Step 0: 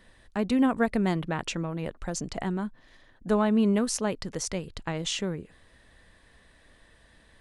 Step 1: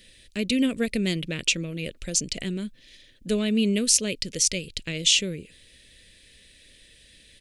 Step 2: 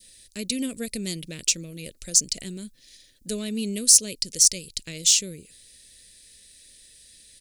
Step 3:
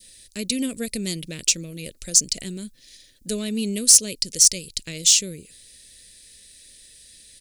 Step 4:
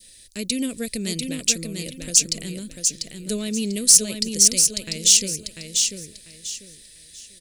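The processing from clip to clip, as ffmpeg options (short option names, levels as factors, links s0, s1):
-af "firequalizer=gain_entry='entry(550,0);entry(810,-22);entry(2400,12)':delay=0.05:min_phase=1"
-af "adynamicequalizer=threshold=0.00708:dfrequency=1300:dqfactor=0.81:tfrequency=1300:tqfactor=0.81:attack=5:release=100:ratio=0.375:range=2.5:mode=cutabove:tftype=bell,asoftclip=type=tanh:threshold=0.447,aexciter=amount=4.3:drive=5.9:freq=4300,volume=0.501"
-af "asoftclip=type=tanh:threshold=0.668,volume=1.41"
-af "aecho=1:1:694|1388|2082|2776:0.562|0.152|0.041|0.0111"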